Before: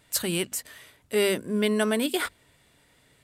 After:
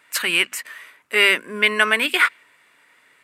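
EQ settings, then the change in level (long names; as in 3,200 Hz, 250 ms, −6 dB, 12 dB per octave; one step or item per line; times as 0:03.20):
high-pass filter 300 Hz 12 dB per octave
dynamic equaliser 2,600 Hz, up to +8 dB, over −44 dBFS, Q 0.88
flat-topped bell 1,600 Hz +10.5 dB
0.0 dB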